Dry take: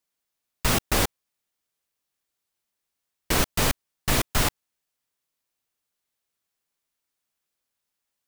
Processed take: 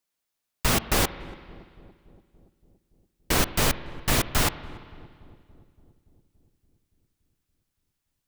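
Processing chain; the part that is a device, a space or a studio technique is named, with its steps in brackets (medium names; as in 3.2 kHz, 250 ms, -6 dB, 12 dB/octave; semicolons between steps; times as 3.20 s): dub delay into a spring reverb (filtered feedback delay 285 ms, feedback 70%, low-pass 960 Hz, level -21 dB; spring tank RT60 2 s, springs 48/57 ms, chirp 40 ms, DRR 14 dB)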